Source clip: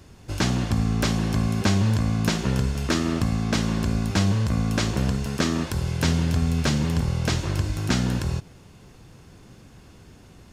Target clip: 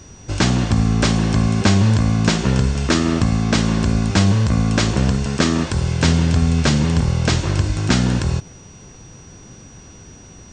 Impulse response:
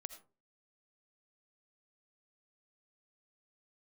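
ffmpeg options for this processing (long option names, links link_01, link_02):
-af "aeval=exprs='val(0)+0.00251*sin(2*PI*5800*n/s)':channel_layout=same,volume=6.5dB" -ar 32000 -c:a mp2 -b:a 96k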